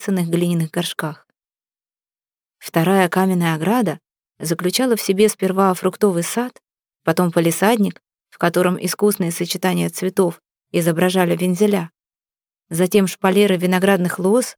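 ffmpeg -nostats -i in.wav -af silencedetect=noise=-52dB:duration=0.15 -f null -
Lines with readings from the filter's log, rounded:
silence_start: 1.30
silence_end: 2.61 | silence_duration: 1.31
silence_start: 3.98
silence_end: 4.40 | silence_duration: 0.42
silence_start: 6.59
silence_end: 7.06 | silence_duration: 0.47
silence_start: 7.98
silence_end: 8.32 | silence_duration: 0.34
silence_start: 10.39
silence_end: 10.72 | silence_duration: 0.34
silence_start: 11.89
silence_end: 12.70 | silence_duration: 0.81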